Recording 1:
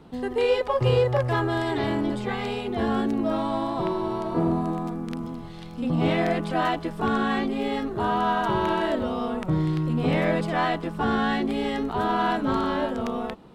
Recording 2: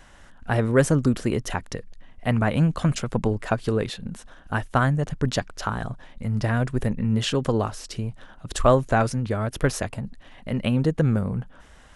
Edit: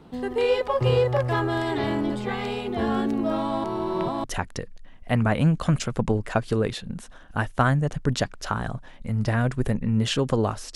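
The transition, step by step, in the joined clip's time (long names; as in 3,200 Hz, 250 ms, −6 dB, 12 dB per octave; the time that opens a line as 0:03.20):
recording 1
0:03.64–0:04.24: reverse
0:04.24: continue with recording 2 from 0:01.40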